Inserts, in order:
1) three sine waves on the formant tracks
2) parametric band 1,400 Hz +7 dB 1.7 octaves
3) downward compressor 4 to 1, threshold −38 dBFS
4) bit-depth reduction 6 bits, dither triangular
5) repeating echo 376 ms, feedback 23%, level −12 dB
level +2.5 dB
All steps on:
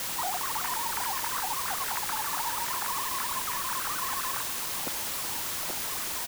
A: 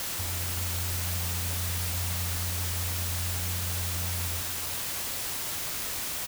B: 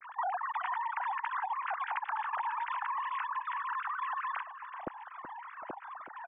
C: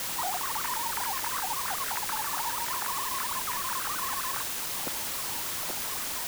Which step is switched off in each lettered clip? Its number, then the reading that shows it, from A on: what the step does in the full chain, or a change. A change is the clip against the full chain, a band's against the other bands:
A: 1, 125 Hz band +20.0 dB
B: 4, 4 kHz band −18.0 dB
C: 5, change in crest factor −1.5 dB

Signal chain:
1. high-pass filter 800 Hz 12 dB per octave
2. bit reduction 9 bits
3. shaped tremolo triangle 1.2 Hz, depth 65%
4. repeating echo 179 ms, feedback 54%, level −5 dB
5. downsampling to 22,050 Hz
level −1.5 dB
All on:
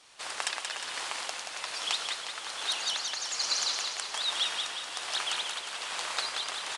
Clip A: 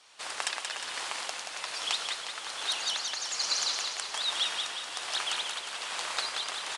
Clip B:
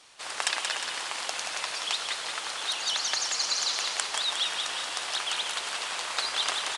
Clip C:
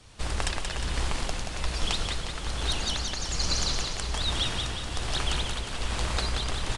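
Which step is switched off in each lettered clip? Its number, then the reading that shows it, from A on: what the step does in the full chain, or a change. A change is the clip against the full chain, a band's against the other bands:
2, distortion level −28 dB
3, change in integrated loudness +3.0 LU
1, 250 Hz band +19.0 dB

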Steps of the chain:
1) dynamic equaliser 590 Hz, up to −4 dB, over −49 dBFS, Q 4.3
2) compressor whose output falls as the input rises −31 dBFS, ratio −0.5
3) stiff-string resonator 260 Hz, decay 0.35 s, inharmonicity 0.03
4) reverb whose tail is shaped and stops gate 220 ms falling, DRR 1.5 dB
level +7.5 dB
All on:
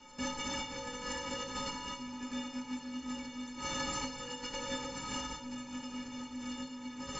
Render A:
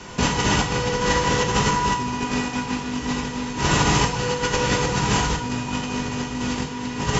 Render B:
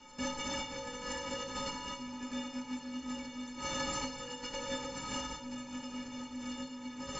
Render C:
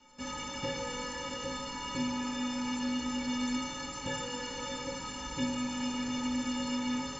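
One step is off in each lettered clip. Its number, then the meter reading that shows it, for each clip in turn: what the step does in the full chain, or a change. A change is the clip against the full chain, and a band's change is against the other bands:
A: 3, 125 Hz band +9.0 dB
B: 1, 500 Hz band +2.0 dB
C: 2, change in crest factor −2.5 dB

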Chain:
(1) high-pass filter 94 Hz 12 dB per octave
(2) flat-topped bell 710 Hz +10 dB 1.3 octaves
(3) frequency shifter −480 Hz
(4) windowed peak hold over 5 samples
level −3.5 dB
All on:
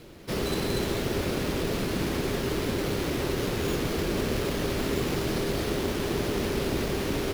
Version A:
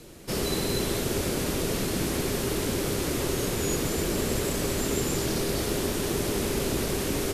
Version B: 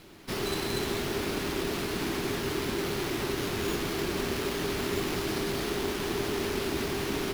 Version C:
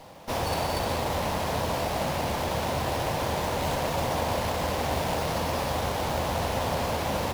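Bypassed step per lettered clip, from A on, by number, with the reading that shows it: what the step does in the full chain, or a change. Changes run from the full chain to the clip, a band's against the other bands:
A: 4, distortion level −6 dB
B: 2, 125 Hz band −5.5 dB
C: 3, 1 kHz band +9.0 dB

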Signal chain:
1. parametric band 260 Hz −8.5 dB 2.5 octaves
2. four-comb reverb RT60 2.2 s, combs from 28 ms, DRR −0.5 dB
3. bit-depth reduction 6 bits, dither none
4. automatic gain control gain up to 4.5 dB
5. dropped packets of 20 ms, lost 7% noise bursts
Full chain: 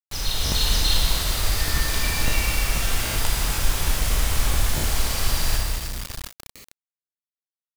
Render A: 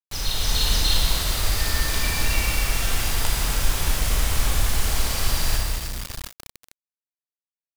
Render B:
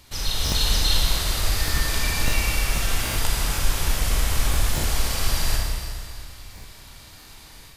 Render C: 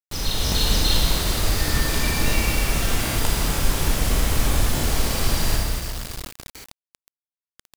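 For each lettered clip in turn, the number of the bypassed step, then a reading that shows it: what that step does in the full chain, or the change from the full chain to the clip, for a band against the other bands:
5, change in momentary loudness spread −1 LU
3, distortion level −16 dB
1, 250 Hz band +5.5 dB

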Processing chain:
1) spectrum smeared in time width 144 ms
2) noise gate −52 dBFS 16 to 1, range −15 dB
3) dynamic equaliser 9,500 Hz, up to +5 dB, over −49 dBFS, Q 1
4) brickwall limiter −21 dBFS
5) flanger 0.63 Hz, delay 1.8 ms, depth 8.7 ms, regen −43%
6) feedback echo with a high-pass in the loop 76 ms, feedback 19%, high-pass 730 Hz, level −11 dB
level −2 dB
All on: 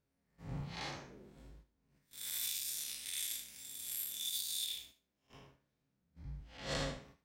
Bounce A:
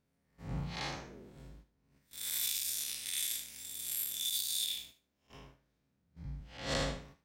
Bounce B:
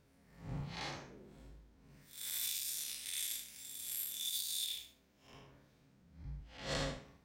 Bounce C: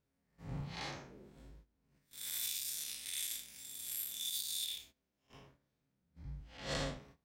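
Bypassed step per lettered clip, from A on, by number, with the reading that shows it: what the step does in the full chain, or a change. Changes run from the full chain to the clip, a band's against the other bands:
5, change in integrated loudness +4.0 LU
2, change in momentary loudness spread +2 LU
6, echo-to-direct ratio −12.0 dB to none audible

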